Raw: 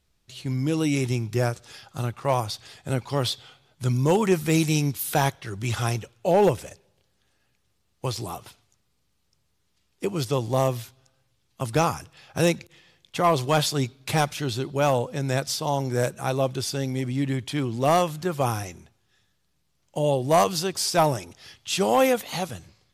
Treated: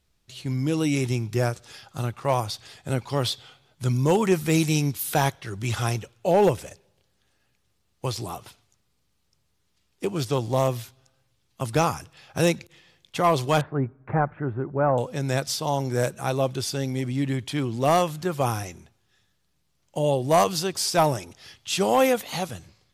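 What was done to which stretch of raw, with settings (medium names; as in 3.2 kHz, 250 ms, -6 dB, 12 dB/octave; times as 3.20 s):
8.18–10.68 s: loudspeaker Doppler distortion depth 0.11 ms
13.61–14.98 s: steep low-pass 1.7 kHz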